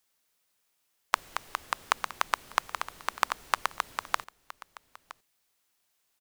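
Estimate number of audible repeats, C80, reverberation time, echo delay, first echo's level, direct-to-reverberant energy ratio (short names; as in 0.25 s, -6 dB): 1, none, none, 0.966 s, -18.0 dB, none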